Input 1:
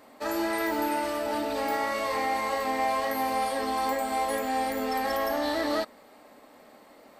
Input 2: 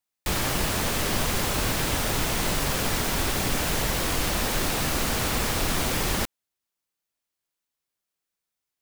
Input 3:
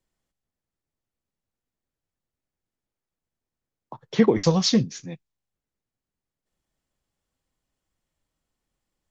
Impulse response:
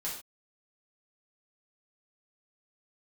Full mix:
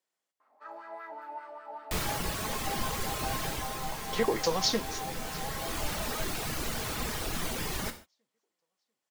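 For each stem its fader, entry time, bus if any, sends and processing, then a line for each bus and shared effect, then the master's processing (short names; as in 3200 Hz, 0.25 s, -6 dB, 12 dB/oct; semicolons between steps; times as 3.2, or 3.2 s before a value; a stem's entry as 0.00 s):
-7.5 dB, 0.40 s, send -13 dB, no echo send, wah 5.1 Hz 700–1400 Hz, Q 4
-8.0 dB, 1.65 s, send -5.5 dB, no echo send, reverb removal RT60 1.5 s; auto duck -12 dB, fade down 0.45 s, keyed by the third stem
-2.0 dB, 0.00 s, no send, echo send -21 dB, HPF 480 Hz 12 dB/oct; limiter -14.5 dBFS, peak gain reduction 4.5 dB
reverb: on, pre-delay 3 ms
echo: feedback echo 0.692 s, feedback 44%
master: dry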